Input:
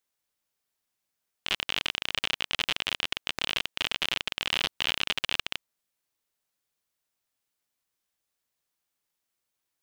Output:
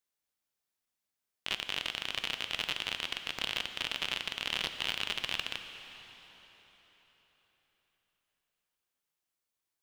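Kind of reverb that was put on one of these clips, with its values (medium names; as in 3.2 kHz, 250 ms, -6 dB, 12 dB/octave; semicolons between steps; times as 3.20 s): plate-style reverb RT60 4.4 s, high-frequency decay 0.85×, DRR 7.5 dB; trim -5.5 dB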